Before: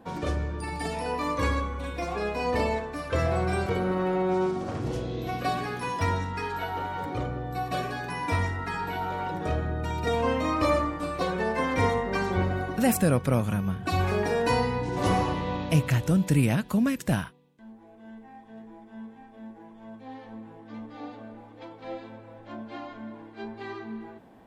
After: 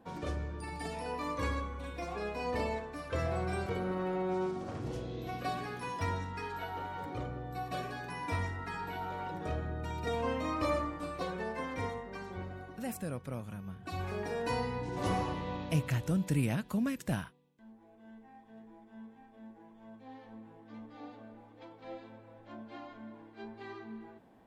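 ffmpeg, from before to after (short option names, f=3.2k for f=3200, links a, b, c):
-af "afade=t=out:st=11.04:d=1.1:silence=0.398107,afade=t=in:st=13.58:d=1.25:silence=0.398107"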